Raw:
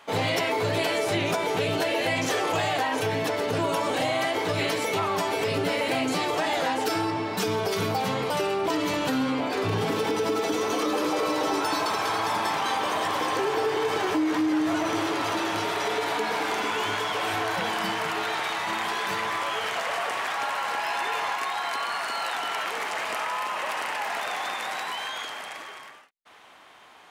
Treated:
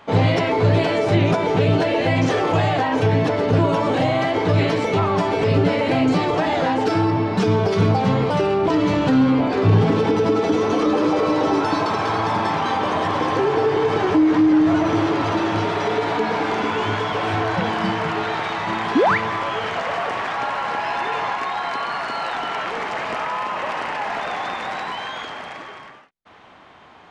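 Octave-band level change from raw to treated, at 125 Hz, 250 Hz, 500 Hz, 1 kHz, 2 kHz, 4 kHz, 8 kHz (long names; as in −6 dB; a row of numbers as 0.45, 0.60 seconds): +15.0, +10.0, +7.0, +5.5, +3.0, 0.0, −6.0 decibels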